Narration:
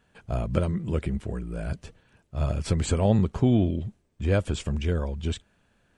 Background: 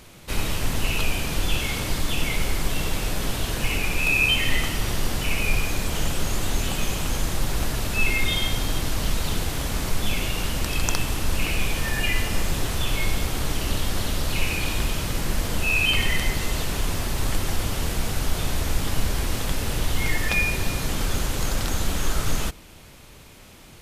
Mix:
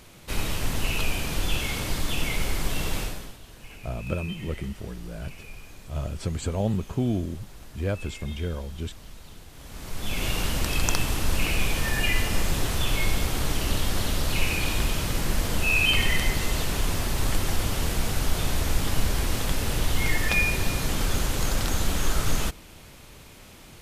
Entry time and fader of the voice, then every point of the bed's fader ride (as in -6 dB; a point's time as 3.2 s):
3.55 s, -4.5 dB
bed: 3.01 s -2.5 dB
3.39 s -20.5 dB
9.5 s -20.5 dB
10.28 s -0.5 dB